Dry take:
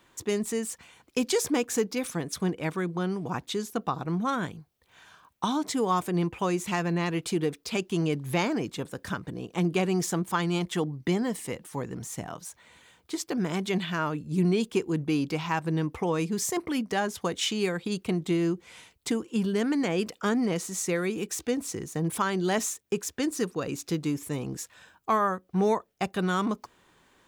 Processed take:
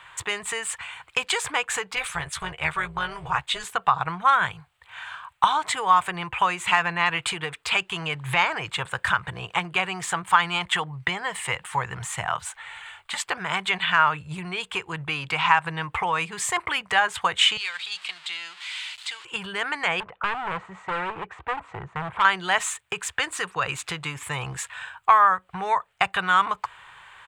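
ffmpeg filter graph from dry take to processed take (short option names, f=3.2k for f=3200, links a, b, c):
-filter_complex "[0:a]asettb=1/sr,asplit=3[a][b][c];[a]atrim=end=1.964[d];[b]atrim=start=1.96:end=3.64,asetpts=PTS-STARTPTS,afade=t=in:d=0.004:c=qsin,afade=t=out:st=1.676:d=0.004:c=qsin,equalizer=f=650:w=0.36:g=-5,tremolo=f=230:d=0.571,asplit=2[e][f];[f]adelay=13,volume=-6dB[g];[e][g]amix=inputs=2:normalize=0,atrim=end_sample=74088[h];[c]atrim=start=3.636[i];[d][h]acrossfade=d=0.004:c1=hsin:c2=qsin[j];[j][i]acrossfade=d=0.004:c1=qsin:c2=hsin,asettb=1/sr,asplit=3[k][l][m];[k]atrim=end=12.414[n];[l]atrim=start=12.41:end=13.26,asetpts=PTS-STARTPTS,afade=t=in:d=0.004:c=qsin,afade=t=out:st=0.846:d=0.004:c=qsin,highpass=140,equalizer=f=310:w=2:g=-7.5,afreqshift=-89[o];[m]atrim=start=13.256[p];[n][o]acrossfade=d=0.004:c1=hsin:c2=qsin[q];[q][p]acrossfade=d=0.004:c1=qsin:c2=hsin,asettb=1/sr,asplit=3[r][s][t];[r]atrim=end=17.574[u];[s]atrim=start=17.57:end=19.25,asetpts=PTS-STARTPTS,afade=t=in:d=0.004:c=qsin,afade=t=out:st=1.676:d=0.004:c=qsin,aeval=exprs='val(0)+0.5*0.0178*sgn(val(0))':c=same,bandpass=f=4.6k:t=q:w=2.2,deesser=0.85[v];[t]atrim=start=19.246[w];[u][v]acrossfade=d=0.004:c1=hsin:c2=qsin[x];[x][w]acrossfade=d=0.004:c1=qsin:c2=hsin,asettb=1/sr,asplit=3[y][z][aa];[y]atrim=end=20.004[ab];[z]atrim=start=20:end=22.25,asetpts=PTS-STARTPTS,afade=t=in:d=0.004:c=qsin,afade=t=out:st=2.246:d=0.004:c=qsin,lowpass=1k,asoftclip=type=hard:threshold=-30.5dB[ac];[aa]atrim=start=22.246[ad];[ab][ac]acrossfade=d=0.004:c1=hsin:c2=qsin[ae];[ae][ad]acrossfade=d=0.004:c1=qsin:c2=hsin,equalizer=f=190:w=7.9:g=4.5,acompressor=threshold=-30dB:ratio=3,firequalizer=gain_entry='entry(130,0);entry(230,-24);entry(380,-10);entry(880,10);entry(1400,12);entry(2900,11);entry(5600,-8);entry(8000,4);entry(12000,-10)':delay=0.05:min_phase=1,volume=6dB"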